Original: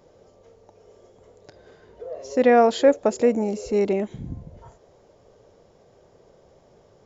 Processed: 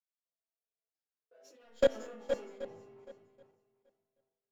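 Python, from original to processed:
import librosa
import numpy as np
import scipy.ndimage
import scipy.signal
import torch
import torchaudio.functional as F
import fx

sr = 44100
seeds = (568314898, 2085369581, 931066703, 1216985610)

p1 = fx.rider(x, sr, range_db=5, speed_s=2.0)
p2 = x + (p1 * librosa.db_to_amplitude(2.5))
p3 = fx.leveller(p2, sr, passes=2)
p4 = fx.low_shelf(p3, sr, hz=170.0, db=-10.5)
p5 = fx.resonator_bank(p4, sr, root=45, chord='minor', decay_s=0.64)
p6 = fx.rev_spring(p5, sr, rt60_s=2.5, pass_ms=(53,), chirp_ms=35, drr_db=1.0)
p7 = fx.stretch_vocoder_free(p6, sr, factor=0.64)
p8 = fx.level_steps(p7, sr, step_db=24)
p9 = fx.echo_swing(p8, sr, ms=779, ratio=1.5, feedback_pct=31, wet_db=-6.5)
p10 = fx.band_widen(p9, sr, depth_pct=100)
y = p10 * librosa.db_to_amplitude(-5.5)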